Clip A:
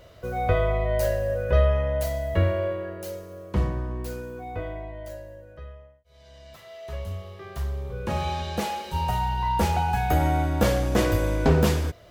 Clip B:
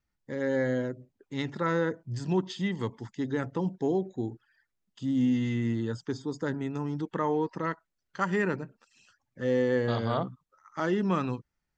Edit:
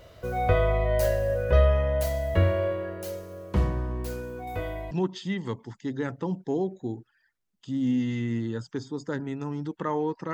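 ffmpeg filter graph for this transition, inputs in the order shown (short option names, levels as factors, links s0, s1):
-filter_complex "[0:a]asettb=1/sr,asplit=3[s0][s1][s2];[s0]atrim=end=4.474[s3];[s1]atrim=start=4.47:end=4.91,asetpts=PTS-STARTPTS,afade=t=in:d=0.004:c=qsin,afade=t=out:st=0.436:d=0.004:c=qsin,aemphasis=mode=production:type=75kf[s4];[s2]atrim=start=4.906[s5];[s3][s4]acrossfade=d=0.004:c1=hsin:c2=qsin[s6];[s6][s5]acrossfade=d=0.004:c1=qsin:c2=hsin,apad=whole_dur=10.33,atrim=end=10.33,atrim=end=4.912[s7];[1:a]atrim=start=2.248:end=7.67[s8];[s7][s8]acrossfade=d=0.004:c1=hsin:c2=hsin"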